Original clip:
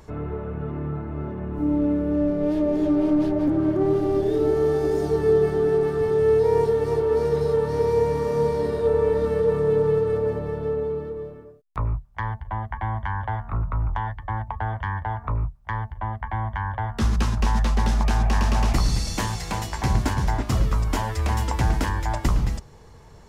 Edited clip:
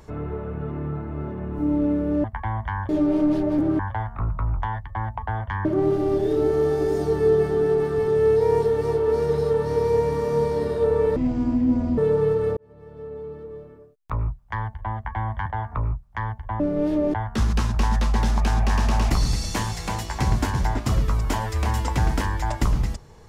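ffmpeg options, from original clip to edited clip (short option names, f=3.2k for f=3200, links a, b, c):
-filter_complex "[0:a]asplit=11[a][b][c][d][e][f][g][h][i][j][k];[a]atrim=end=2.242[l];[b]atrim=start=16.118:end=16.772[m];[c]atrim=start=2.778:end=3.682[n];[d]atrim=start=13.118:end=14.982[o];[e]atrim=start=3.678:end=9.194[p];[f]atrim=start=9.19:end=9.64,asetpts=PTS-STARTPTS,asetrate=24255,aresample=44100[q];[g]atrim=start=9.636:end=10.23,asetpts=PTS-STARTPTS,afade=t=out:st=0.59:d=0.004:c=hsin[r];[h]atrim=start=10.23:end=13.122,asetpts=PTS-STARTPTS,afade=t=in:d=1.71[s];[i]atrim=start=14.978:end=16.122[t];[j]atrim=start=2.238:end=2.782[u];[k]atrim=start=16.768[v];[l][m]acrossfade=d=0.004:c1=hsin:c2=hsin[w];[w][n]acrossfade=d=0.004:c1=hsin:c2=hsin[x];[x][o]acrossfade=d=0.004:c1=hsin:c2=hsin[y];[y][p]acrossfade=d=0.004:c1=hsin:c2=hsin[z];[z][q]acrossfade=d=0.004:c1=hsin:c2=hsin[aa];[r][s]concat=n=2:v=0:a=1[ab];[aa][ab]acrossfade=d=0.004:c1=hsin:c2=hsin[ac];[ac][t]acrossfade=d=0.004:c1=hsin:c2=hsin[ad];[ad][u]acrossfade=d=0.004:c1=hsin:c2=hsin[ae];[ae][v]acrossfade=d=0.004:c1=hsin:c2=hsin"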